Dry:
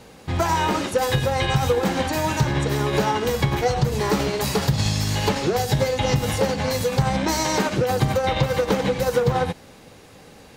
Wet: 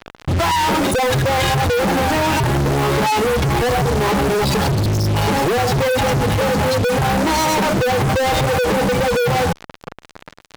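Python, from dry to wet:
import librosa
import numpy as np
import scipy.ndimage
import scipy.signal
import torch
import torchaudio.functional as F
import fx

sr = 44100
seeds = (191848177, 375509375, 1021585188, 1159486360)

y = fx.dynamic_eq(x, sr, hz=860.0, q=6.9, threshold_db=-38.0, ratio=4.0, max_db=4)
y = fx.spec_gate(y, sr, threshold_db=-15, keep='strong')
y = fx.fuzz(y, sr, gain_db=48.0, gate_db=-40.0)
y = y * 10.0 ** (-2.5 / 20.0)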